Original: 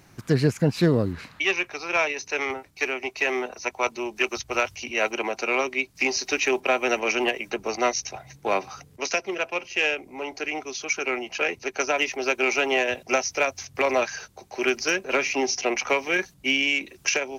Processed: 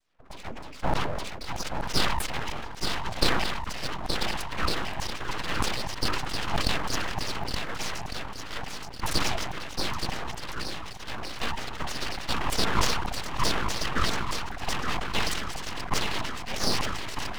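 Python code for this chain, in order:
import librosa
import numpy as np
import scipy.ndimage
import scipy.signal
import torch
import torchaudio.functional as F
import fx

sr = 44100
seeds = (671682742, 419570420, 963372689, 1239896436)

p1 = fx.wiener(x, sr, points=25)
p2 = fx.rotary_switch(p1, sr, hz=0.85, then_hz=6.0, switch_at_s=13.14)
p3 = 10.0 ** (-23.5 / 20.0) * np.tanh(p2 / 10.0 ** (-23.5 / 20.0))
p4 = p2 + F.gain(torch.from_numpy(p3), -5.5).numpy()
p5 = fx.noise_vocoder(p4, sr, seeds[0], bands=16)
p6 = fx.filter_lfo_bandpass(p5, sr, shape='saw_down', hz=3.2, low_hz=450.0, high_hz=5300.0, q=2.1)
p7 = p6 + fx.echo_swing(p6, sr, ms=1455, ratio=1.5, feedback_pct=34, wet_db=-6.0, dry=0)
p8 = np.abs(p7)
p9 = fx.sustainer(p8, sr, db_per_s=34.0)
y = F.gain(torch.from_numpy(p9), 4.5).numpy()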